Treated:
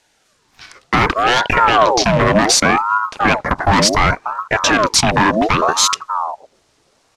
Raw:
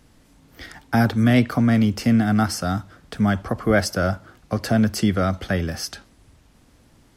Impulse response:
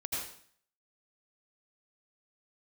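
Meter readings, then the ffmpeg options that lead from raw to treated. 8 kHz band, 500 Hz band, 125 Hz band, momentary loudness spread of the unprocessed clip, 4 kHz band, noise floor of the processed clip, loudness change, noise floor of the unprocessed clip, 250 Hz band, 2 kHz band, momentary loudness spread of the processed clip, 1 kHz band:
+16.0 dB, +8.0 dB, -0.5 dB, 12 LU, +15.0 dB, -60 dBFS, +7.0 dB, -56 dBFS, -1.0 dB, +11.5 dB, 8 LU, +15.5 dB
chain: -filter_complex "[0:a]bass=f=250:g=-11,treble=f=4000:g=9,afwtdn=0.0282,asoftclip=type=hard:threshold=0.0841,acontrast=22,acrossover=split=220[s0][s1];[s0]adelay=590[s2];[s2][s1]amix=inputs=2:normalize=0,acrusher=bits=9:mode=log:mix=0:aa=0.000001,lowpass=6100,alimiter=level_in=5.31:limit=0.891:release=50:level=0:latency=1,aeval=exprs='val(0)*sin(2*PI*780*n/s+780*0.55/0.67*sin(2*PI*0.67*n/s))':c=same"

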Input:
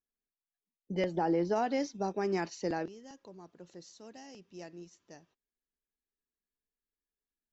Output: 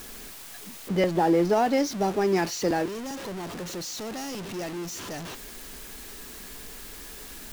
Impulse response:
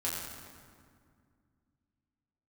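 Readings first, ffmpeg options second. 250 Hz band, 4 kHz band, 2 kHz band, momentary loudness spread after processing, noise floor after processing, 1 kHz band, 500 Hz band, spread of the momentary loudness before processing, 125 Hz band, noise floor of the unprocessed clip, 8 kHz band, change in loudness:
+8.5 dB, +13.5 dB, +9.5 dB, 18 LU, -43 dBFS, +8.5 dB, +8.5 dB, 22 LU, +9.0 dB, under -85 dBFS, no reading, +6.0 dB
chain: -af "aeval=exprs='val(0)+0.5*0.0119*sgn(val(0))':c=same,volume=2.24"

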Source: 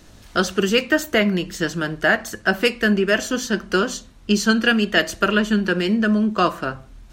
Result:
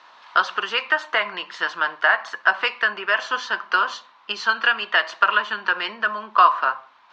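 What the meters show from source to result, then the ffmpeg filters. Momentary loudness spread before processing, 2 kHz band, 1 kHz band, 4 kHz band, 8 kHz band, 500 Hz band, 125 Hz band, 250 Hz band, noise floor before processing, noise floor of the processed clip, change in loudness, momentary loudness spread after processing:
7 LU, +2.0 dB, +6.0 dB, -1.5 dB, -15.0 dB, -10.0 dB, under -25 dB, -25.0 dB, -46 dBFS, -53 dBFS, -1.0 dB, 8 LU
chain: -af "lowpass=f=4200:w=0.5412,lowpass=f=4200:w=1.3066,acompressor=threshold=0.126:ratio=3,highpass=f=1000:t=q:w=4.9,volume=1.19"

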